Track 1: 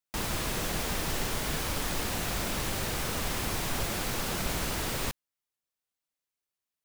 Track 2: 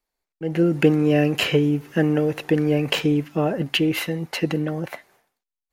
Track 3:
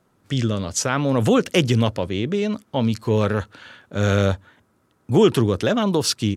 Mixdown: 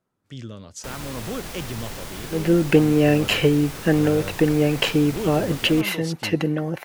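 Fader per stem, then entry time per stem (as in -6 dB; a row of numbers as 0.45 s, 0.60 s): -3.5 dB, +1.0 dB, -14.5 dB; 0.70 s, 1.90 s, 0.00 s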